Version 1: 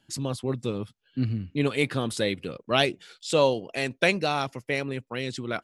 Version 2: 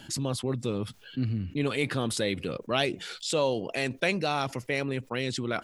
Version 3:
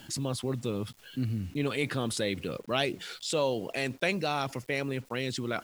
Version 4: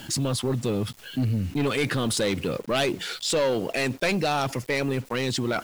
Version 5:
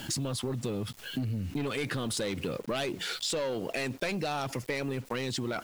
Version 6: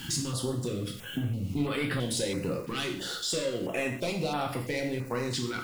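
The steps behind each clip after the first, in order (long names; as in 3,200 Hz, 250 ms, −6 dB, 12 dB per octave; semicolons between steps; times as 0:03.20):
envelope flattener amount 50%; level −6 dB
bit reduction 9 bits; level −2 dB
soft clipping −27 dBFS, distortion −11 dB; level +9 dB
downward compressor, threshold −30 dBFS, peak gain reduction 9 dB
dense smooth reverb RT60 0.56 s, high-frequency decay 1×, DRR 1 dB; notch on a step sequencer 3 Hz 620–6,300 Hz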